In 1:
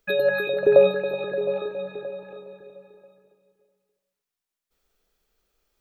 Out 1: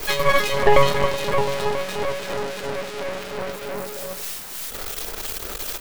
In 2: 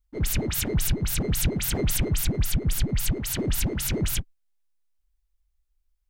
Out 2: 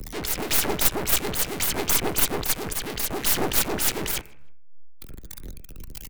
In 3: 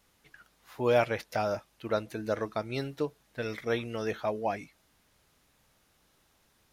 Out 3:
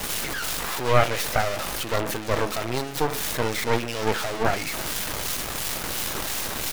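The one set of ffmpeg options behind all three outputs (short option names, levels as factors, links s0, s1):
-filter_complex "[0:a]aeval=exprs='val(0)+0.5*0.0794*sgn(val(0))':c=same,afftdn=nr=12:nf=-44,highshelf=f=11000:g=2.5,bandreject=f=71.27:t=h:w=4,bandreject=f=142.54:t=h:w=4,bandreject=f=213.81:t=h:w=4,bandreject=f=285.08:t=h:w=4,bandreject=f=356.35:t=h:w=4,bandreject=f=427.62:t=h:w=4,bandreject=f=498.89:t=h:w=4,bandreject=f=570.16:t=h:w=4,bandreject=f=641.43:t=h:w=4,bandreject=f=712.7:t=h:w=4,bandreject=f=783.97:t=h:w=4,bandreject=f=855.24:t=h:w=4,bandreject=f=926.51:t=h:w=4,bandreject=f=997.78:t=h:w=4,bandreject=f=1069.05:t=h:w=4,bandreject=f=1140.32:t=h:w=4,bandreject=f=1211.59:t=h:w=4,bandreject=f=1282.86:t=h:w=4,bandreject=f=1354.13:t=h:w=4,bandreject=f=1425.4:t=h:w=4,bandreject=f=1496.67:t=h:w=4,bandreject=f=1567.94:t=h:w=4,bandreject=f=1639.21:t=h:w=4,bandreject=f=1710.48:t=h:w=4,bandreject=f=1781.75:t=h:w=4,bandreject=f=1853.02:t=h:w=4,bandreject=f=1924.29:t=h:w=4,bandreject=f=1995.56:t=h:w=4,bandreject=f=2066.83:t=h:w=4,bandreject=f=2138.1:t=h:w=4,bandreject=f=2209.37:t=h:w=4,bandreject=f=2280.64:t=h:w=4,bandreject=f=2351.91:t=h:w=4,bandreject=f=2423.18:t=h:w=4,bandreject=f=2494.45:t=h:w=4,bandreject=f=2565.72:t=h:w=4,bandreject=f=2636.99:t=h:w=4,bandreject=f=2708.26:t=h:w=4,acrossover=split=290|3000[s0][s1][s2];[s0]acompressor=threshold=0.0158:ratio=6[s3];[s3][s1][s2]amix=inputs=3:normalize=0,acrossover=split=130|1300|6000[s4][s5][s6][s7];[s5]crystalizer=i=1:c=0[s8];[s4][s8][s6][s7]amix=inputs=4:normalize=0,acrossover=split=1900[s9][s10];[s9]aeval=exprs='val(0)*(1-0.5/2+0.5/2*cos(2*PI*2.9*n/s))':c=same[s11];[s10]aeval=exprs='val(0)*(1-0.5/2-0.5/2*cos(2*PI*2.9*n/s))':c=same[s12];[s11][s12]amix=inputs=2:normalize=0,aeval=exprs='0.501*(cos(1*acos(clip(val(0)/0.501,-1,1)))-cos(1*PI/2))+0.2*(cos(6*acos(clip(val(0)/0.501,-1,1)))-cos(6*PI/2))':c=same,asplit=2[s13][s14];[s14]adelay=155,lowpass=f=2800:p=1,volume=0.0631,asplit=2[s15][s16];[s16]adelay=155,lowpass=f=2800:p=1,volume=0.39[s17];[s13][s15][s17]amix=inputs=3:normalize=0"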